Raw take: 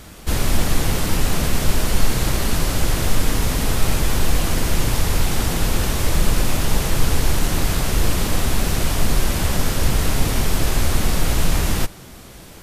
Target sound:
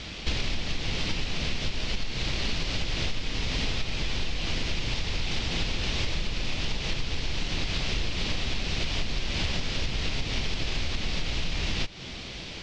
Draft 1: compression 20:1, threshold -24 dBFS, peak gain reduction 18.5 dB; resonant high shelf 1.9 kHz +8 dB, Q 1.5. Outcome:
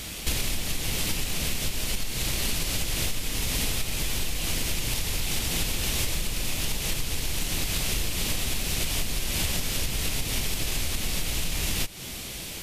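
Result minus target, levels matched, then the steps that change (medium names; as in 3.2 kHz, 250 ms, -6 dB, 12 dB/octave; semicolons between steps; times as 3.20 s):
8 kHz band +10.0 dB
add after compression: inverse Chebyshev low-pass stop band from 11 kHz, stop band 50 dB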